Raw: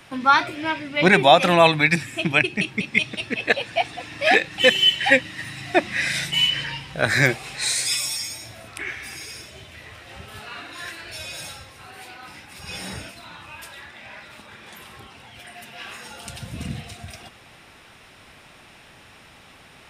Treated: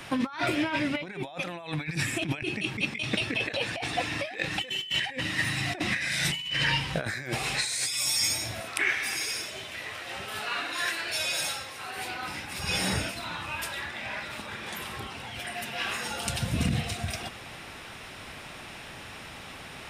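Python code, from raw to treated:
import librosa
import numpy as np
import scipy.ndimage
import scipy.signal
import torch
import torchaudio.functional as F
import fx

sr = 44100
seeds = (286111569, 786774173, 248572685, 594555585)

y = fx.highpass(x, sr, hz=400.0, slope=6, at=(8.61, 11.97))
y = fx.over_compress(y, sr, threshold_db=-30.0, ratio=-1.0)
y = F.gain(torch.from_numpy(y), -1.0).numpy()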